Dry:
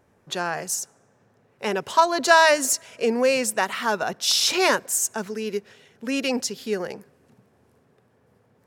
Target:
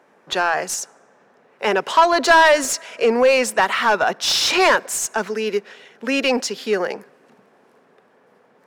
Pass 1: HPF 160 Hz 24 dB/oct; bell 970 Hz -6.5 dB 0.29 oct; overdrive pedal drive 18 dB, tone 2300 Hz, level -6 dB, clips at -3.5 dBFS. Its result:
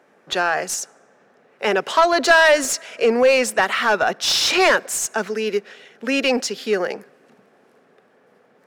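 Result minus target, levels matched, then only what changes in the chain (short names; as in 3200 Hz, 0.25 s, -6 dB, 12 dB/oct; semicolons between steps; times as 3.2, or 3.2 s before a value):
1000 Hz band -2.5 dB
remove: bell 970 Hz -6.5 dB 0.29 oct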